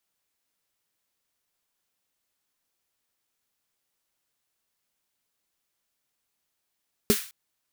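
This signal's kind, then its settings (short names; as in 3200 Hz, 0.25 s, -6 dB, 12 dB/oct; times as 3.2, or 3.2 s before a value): snare drum length 0.21 s, tones 220 Hz, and 410 Hz, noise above 1300 Hz, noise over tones -7 dB, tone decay 0.09 s, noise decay 0.42 s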